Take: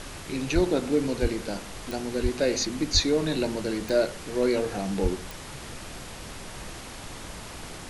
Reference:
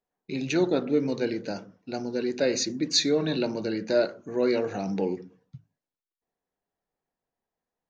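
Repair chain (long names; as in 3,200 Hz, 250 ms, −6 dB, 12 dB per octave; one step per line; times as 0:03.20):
click removal
high-pass at the plosives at 0:00.54/0:01.21/0:02.22/0:02.93/0:05.02
noise reduction from a noise print 30 dB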